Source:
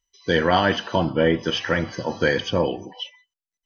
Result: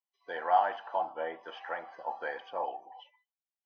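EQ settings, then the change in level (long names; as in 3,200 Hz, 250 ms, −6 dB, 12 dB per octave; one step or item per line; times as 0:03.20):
four-pole ladder band-pass 860 Hz, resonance 75%
notch filter 930 Hz, Q 12
0.0 dB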